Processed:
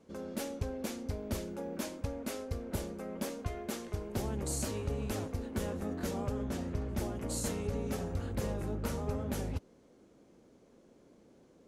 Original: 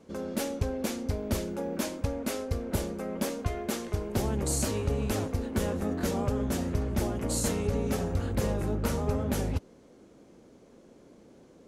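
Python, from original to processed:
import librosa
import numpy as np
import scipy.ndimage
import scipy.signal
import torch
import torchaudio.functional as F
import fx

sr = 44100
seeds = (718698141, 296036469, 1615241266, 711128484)

y = fx.high_shelf(x, sr, hz=7900.0, db=-9.0, at=(6.43, 6.89))
y = F.gain(torch.from_numpy(y), -6.5).numpy()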